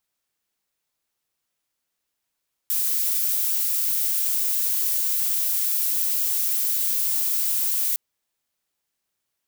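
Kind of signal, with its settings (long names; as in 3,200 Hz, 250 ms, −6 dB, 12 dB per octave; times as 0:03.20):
noise violet, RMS −23 dBFS 5.26 s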